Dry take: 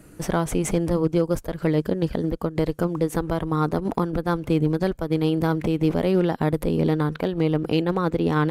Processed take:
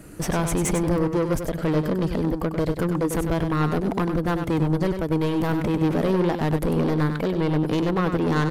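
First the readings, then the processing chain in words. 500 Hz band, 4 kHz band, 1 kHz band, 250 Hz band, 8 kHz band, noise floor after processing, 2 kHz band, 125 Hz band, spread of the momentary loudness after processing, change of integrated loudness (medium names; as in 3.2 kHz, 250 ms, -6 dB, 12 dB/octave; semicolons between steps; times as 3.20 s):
-1.0 dB, 0.0 dB, +0.5 dB, 0.0 dB, +4.0 dB, -31 dBFS, +2.0 dB, +0.5 dB, 3 LU, 0.0 dB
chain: saturation -22.5 dBFS, distortion -8 dB; delay 97 ms -7.5 dB; trim +4.5 dB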